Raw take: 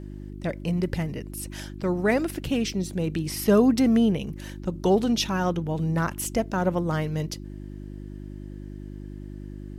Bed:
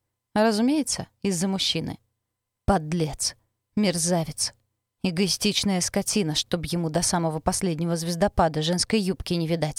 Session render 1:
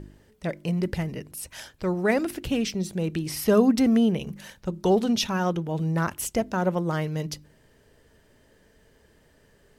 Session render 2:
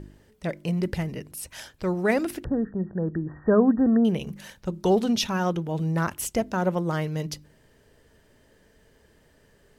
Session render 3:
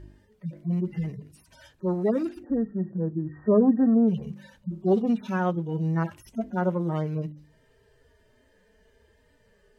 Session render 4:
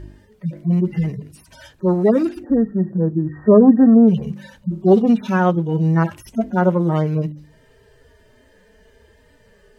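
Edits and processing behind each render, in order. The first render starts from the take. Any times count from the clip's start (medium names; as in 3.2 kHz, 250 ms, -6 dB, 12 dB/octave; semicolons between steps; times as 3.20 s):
de-hum 50 Hz, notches 7
2.44–4.05 s: brick-wall FIR low-pass 1.9 kHz
harmonic-percussive separation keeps harmonic; treble shelf 6.8 kHz -7.5 dB
trim +9.5 dB; peak limiter -1 dBFS, peak gain reduction 1.5 dB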